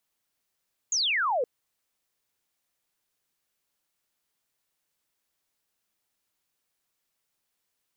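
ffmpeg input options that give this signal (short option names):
-f lavfi -i "aevalsrc='0.0708*clip(t/0.002,0,1)*clip((0.52-t)/0.002,0,1)*sin(2*PI*7000*0.52/log(460/7000)*(exp(log(460/7000)*t/0.52)-1))':d=0.52:s=44100"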